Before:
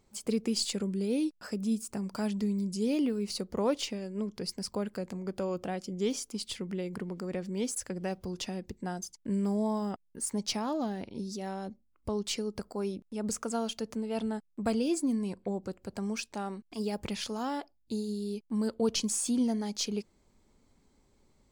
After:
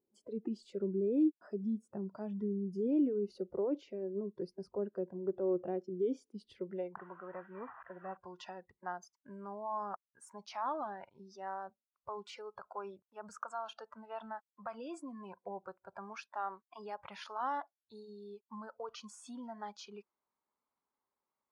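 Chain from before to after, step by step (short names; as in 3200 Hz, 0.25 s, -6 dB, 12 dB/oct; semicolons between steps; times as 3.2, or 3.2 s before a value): 6.97–8.17 delta modulation 16 kbps, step -45.5 dBFS; limiter -25.5 dBFS, peak gain reduction 8.5 dB; spectral noise reduction 16 dB; band-pass sweep 360 Hz -> 1100 Hz, 6.5–7.05; gain +5.5 dB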